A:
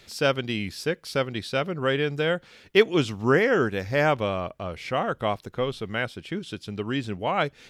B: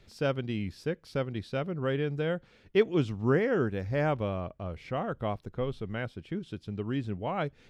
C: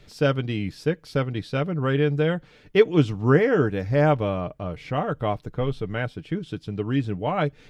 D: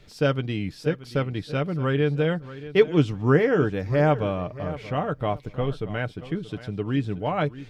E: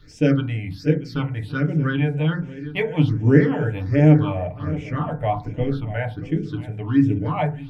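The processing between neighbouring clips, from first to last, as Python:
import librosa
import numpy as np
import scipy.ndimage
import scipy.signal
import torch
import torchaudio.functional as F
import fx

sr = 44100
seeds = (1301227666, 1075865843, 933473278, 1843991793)

y1 = fx.tilt_eq(x, sr, slope=-2.5)
y1 = y1 * 10.0 ** (-8.5 / 20.0)
y2 = y1 + 0.43 * np.pad(y1, (int(6.7 * sr / 1000.0), 0))[:len(y1)]
y2 = y2 * 10.0 ** (6.5 / 20.0)
y3 = fx.echo_feedback(y2, sr, ms=630, feedback_pct=24, wet_db=-15.5)
y3 = y3 * 10.0 ** (-1.0 / 20.0)
y4 = fx.phaser_stages(y3, sr, stages=6, low_hz=300.0, high_hz=1200.0, hz=1.3, feedback_pct=25)
y4 = fx.rev_fdn(y4, sr, rt60_s=0.32, lf_ratio=1.5, hf_ratio=0.25, size_ms=20.0, drr_db=2.5)
y4 = y4 * 10.0 ** (2.0 / 20.0)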